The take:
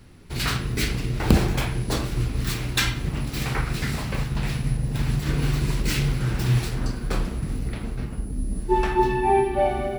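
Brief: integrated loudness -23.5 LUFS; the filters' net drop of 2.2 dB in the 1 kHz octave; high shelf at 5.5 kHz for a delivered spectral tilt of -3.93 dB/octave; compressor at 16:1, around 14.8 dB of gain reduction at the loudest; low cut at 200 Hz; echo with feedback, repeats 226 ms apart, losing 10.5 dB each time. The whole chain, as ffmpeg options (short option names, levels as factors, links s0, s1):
-af "highpass=200,equalizer=f=1000:t=o:g=-3,highshelf=f=5500:g=7.5,acompressor=threshold=0.0251:ratio=16,aecho=1:1:226|452|678:0.299|0.0896|0.0269,volume=3.98"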